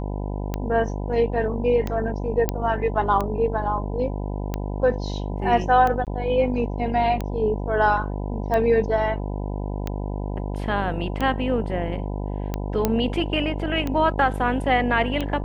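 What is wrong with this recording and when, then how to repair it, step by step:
buzz 50 Hz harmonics 20 -28 dBFS
tick 45 rpm -13 dBFS
2.49 pop -7 dBFS
6.05–6.07 gap 18 ms
12.85 pop -6 dBFS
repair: de-click; de-hum 50 Hz, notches 20; interpolate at 6.05, 18 ms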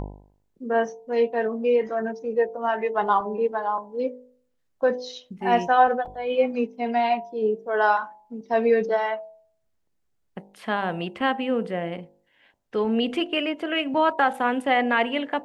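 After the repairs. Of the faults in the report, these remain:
none

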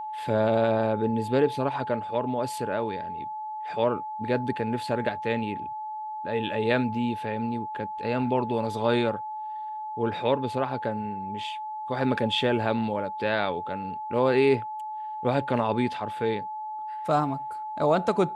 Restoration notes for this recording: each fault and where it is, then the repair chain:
tone 860 Hz -32 dBFS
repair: notch 860 Hz, Q 30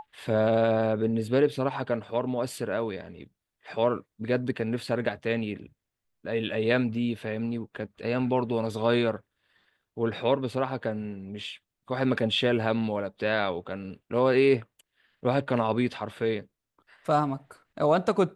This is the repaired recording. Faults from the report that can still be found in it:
none

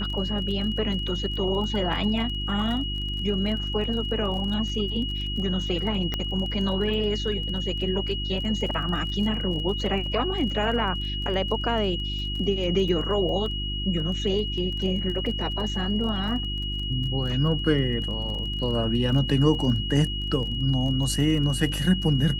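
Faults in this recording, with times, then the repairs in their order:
crackle 25/s -33 dBFS
hum 50 Hz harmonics 7 -31 dBFS
tone 2900 Hz -31 dBFS
6.14 pop -14 dBFS
15.26 gap 2.6 ms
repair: de-click; de-hum 50 Hz, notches 7; notch 2900 Hz, Q 30; interpolate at 15.26, 2.6 ms

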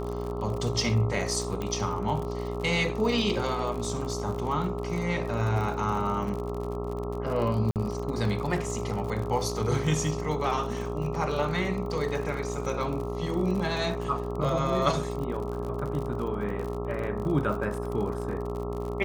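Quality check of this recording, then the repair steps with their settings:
buzz 60 Hz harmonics 22 -34 dBFS
crackle 54/s -33 dBFS
tone 410 Hz -34 dBFS
1.62 pop -19 dBFS
7.71–7.76 gap 48 ms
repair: de-click; de-hum 60 Hz, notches 22; notch 410 Hz, Q 30; interpolate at 7.71, 48 ms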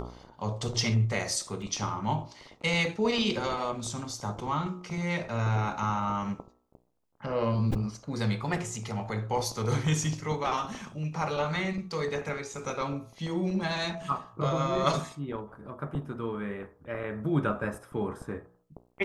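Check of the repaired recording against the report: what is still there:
1.62 pop

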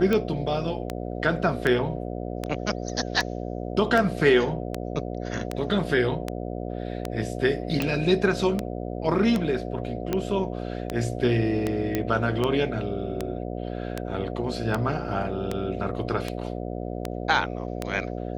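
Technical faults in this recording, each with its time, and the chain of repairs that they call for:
buzz 60 Hz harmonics 12 -32 dBFS
tick 78 rpm -12 dBFS
7.82 pop
11.95 pop -11 dBFS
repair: de-click; de-hum 60 Hz, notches 12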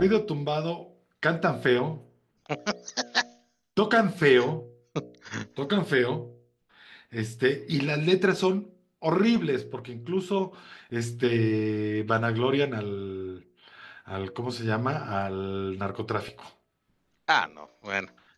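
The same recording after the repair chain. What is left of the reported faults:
none

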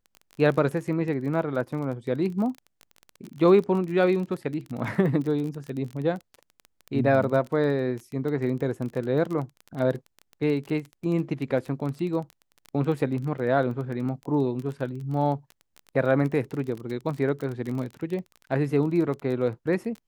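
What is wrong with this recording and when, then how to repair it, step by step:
crackle 22/s -31 dBFS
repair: de-click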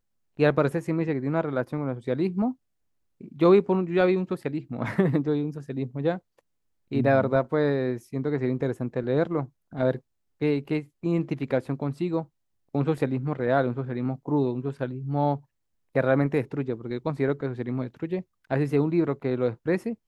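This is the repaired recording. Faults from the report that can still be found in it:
none

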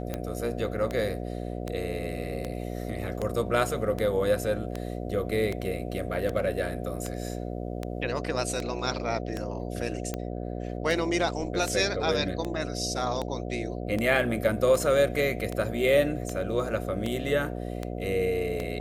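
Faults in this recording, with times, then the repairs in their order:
buzz 60 Hz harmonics 12 -34 dBFS
tick 78 rpm -17 dBFS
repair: de-click; de-hum 60 Hz, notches 12

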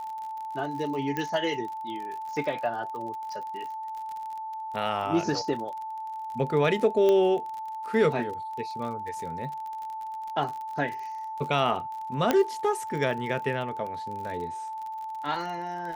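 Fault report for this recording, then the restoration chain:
crackle 41/s -35 dBFS
tone 880 Hz -33 dBFS
1.17 pop -17 dBFS
7.09 pop -14 dBFS
12.31 pop -9 dBFS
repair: de-click; notch 880 Hz, Q 30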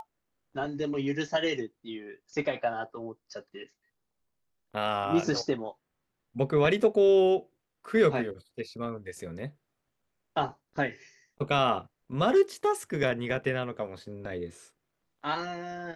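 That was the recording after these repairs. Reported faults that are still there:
12.31 pop

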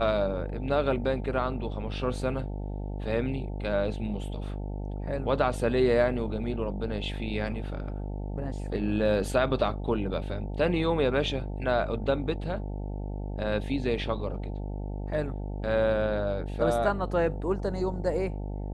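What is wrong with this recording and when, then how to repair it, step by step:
buzz 50 Hz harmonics 18 -34 dBFS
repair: de-hum 50 Hz, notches 18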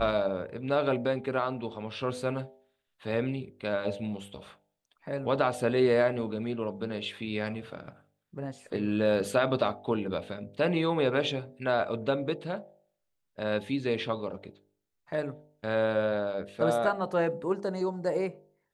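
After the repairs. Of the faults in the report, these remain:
none

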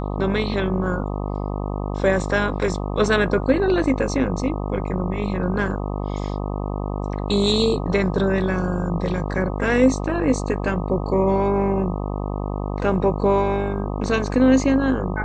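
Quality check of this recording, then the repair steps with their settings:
buzz 50 Hz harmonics 25 -26 dBFS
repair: de-hum 50 Hz, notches 25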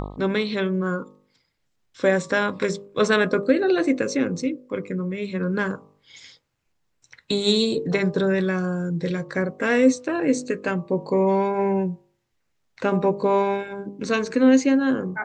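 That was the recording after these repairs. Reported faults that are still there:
none

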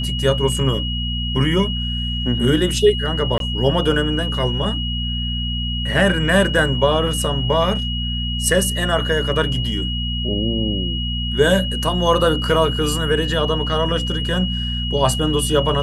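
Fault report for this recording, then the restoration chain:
hum 60 Hz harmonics 4 -24 dBFS
tone 2900 Hz -25 dBFS
3.38–3.4 gap 22 ms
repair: notch 2900 Hz, Q 30; de-hum 60 Hz, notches 4; interpolate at 3.38, 22 ms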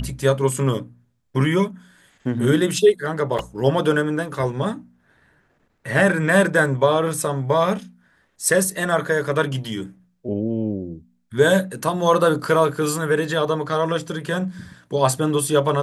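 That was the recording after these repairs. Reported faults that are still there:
none

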